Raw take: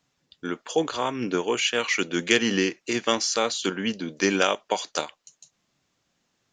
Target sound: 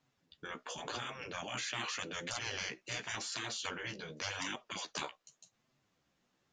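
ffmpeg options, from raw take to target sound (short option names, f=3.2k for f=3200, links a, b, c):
-af "flanger=delay=7.7:depth=8.2:regen=12:speed=0.88:shape=sinusoidal,afftfilt=real='re*lt(hypot(re,im),0.0631)':imag='im*lt(hypot(re,im),0.0631)':win_size=1024:overlap=0.75,highshelf=f=3.7k:g=-8"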